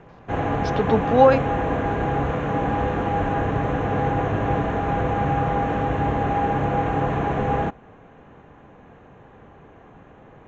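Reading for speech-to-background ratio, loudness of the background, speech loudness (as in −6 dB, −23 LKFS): 4.0 dB, −23.5 LKFS, −19.5 LKFS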